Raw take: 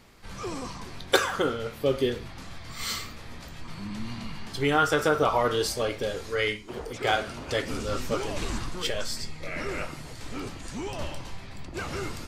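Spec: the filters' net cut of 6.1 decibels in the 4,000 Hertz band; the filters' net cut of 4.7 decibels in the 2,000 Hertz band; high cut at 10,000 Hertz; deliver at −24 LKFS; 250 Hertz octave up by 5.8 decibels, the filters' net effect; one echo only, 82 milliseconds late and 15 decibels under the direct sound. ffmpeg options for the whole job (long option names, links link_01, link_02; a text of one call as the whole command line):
ffmpeg -i in.wav -af "lowpass=10000,equalizer=frequency=250:width_type=o:gain=7.5,equalizer=frequency=2000:width_type=o:gain=-5.5,equalizer=frequency=4000:width_type=o:gain=-6,aecho=1:1:82:0.178,volume=4.5dB" out.wav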